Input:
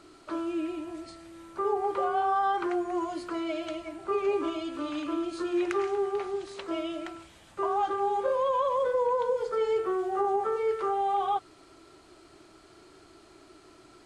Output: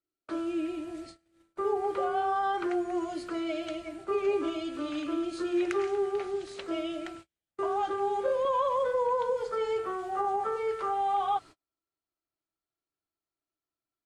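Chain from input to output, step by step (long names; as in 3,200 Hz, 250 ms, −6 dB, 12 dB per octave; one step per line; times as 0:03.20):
noise gate −44 dBFS, range −40 dB
parametric band 1,000 Hz −8 dB 0.44 octaves, from 0:08.45 370 Hz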